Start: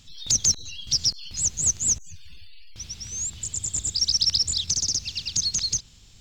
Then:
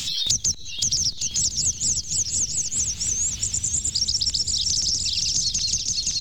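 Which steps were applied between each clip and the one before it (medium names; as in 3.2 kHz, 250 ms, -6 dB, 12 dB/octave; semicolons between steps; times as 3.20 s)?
dynamic bell 1.3 kHz, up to -6 dB, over -45 dBFS, Q 0.8; bouncing-ball echo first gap 520 ms, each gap 0.75×, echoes 5; three bands compressed up and down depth 100%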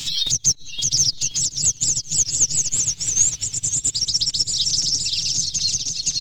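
peak limiter -18 dBFS, peak gain reduction 9 dB; comb 7 ms, depth 85%; upward expansion 2.5:1, over -35 dBFS; trim +8.5 dB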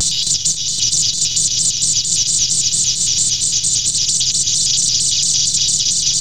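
spectral levelling over time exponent 0.2; flange 1.7 Hz, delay 4.6 ms, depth 3.1 ms, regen -68%; vibrato with a chosen wave square 4.4 Hz, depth 160 cents; trim -1 dB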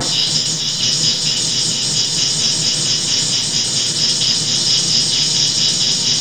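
bit crusher 7-bit; reverberation RT60 0.60 s, pre-delay 3 ms, DRR -14 dB; trim -4.5 dB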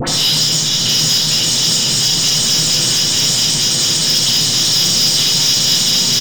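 phase dispersion highs, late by 67 ms, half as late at 1.5 kHz; saturation -14.5 dBFS, distortion -12 dB; delay 77 ms -5 dB; trim +4.5 dB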